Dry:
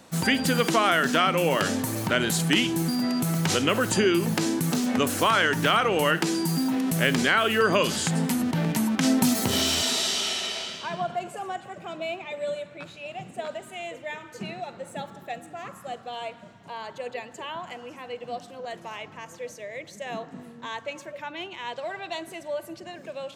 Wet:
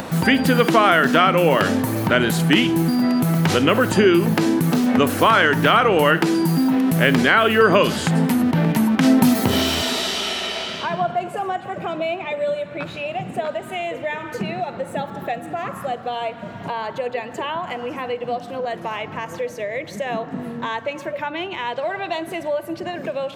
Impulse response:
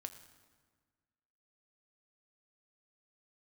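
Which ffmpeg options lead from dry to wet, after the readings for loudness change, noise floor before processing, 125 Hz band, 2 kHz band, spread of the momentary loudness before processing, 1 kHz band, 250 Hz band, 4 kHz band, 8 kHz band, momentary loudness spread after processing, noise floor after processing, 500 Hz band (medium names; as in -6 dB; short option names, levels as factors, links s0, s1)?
+5.0 dB, -47 dBFS, +7.5 dB, +6.0 dB, 17 LU, +7.5 dB, +7.5 dB, +3.0 dB, -2.0 dB, 13 LU, -35 dBFS, +8.0 dB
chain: -filter_complex "[0:a]equalizer=f=7300:t=o:w=1.3:g=-9,acompressor=mode=upward:threshold=0.0447:ratio=2.5,asplit=2[s0][s1];[1:a]atrim=start_sample=2205,lowpass=2700[s2];[s1][s2]afir=irnorm=-1:irlink=0,volume=0.447[s3];[s0][s3]amix=inputs=2:normalize=0,volume=1.88"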